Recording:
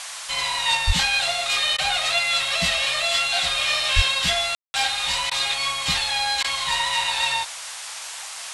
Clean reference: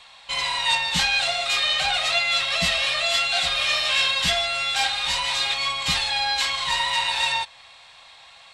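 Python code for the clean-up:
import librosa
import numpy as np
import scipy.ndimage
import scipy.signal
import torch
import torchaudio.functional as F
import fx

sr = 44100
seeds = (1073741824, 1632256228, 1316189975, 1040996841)

y = fx.fix_deplosive(x, sr, at_s=(0.86, 3.95))
y = fx.fix_ambience(y, sr, seeds[0], print_start_s=7.93, print_end_s=8.43, start_s=4.55, end_s=4.74)
y = fx.fix_interpolate(y, sr, at_s=(1.77, 5.3, 6.43), length_ms=12.0)
y = fx.noise_reduce(y, sr, print_start_s=7.93, print_end_s=8.43, reduce_db=13.0)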